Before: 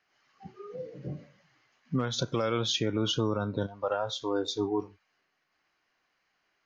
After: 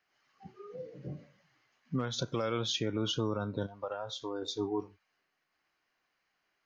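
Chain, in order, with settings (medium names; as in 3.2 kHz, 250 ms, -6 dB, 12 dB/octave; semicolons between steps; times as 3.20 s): 3.82–4.42 s: compression 4:1, threshold -30 dBFS, peak gain reduction 5.5 dB; trim -4 dB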